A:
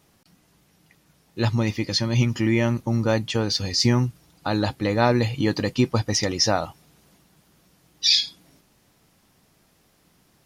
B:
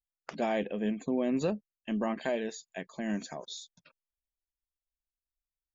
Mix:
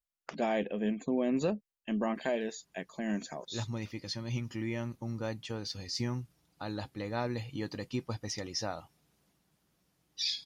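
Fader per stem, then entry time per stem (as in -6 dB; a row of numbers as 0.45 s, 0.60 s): -15.0 dB, -0.5 dB; 2.15 s, 0.00 s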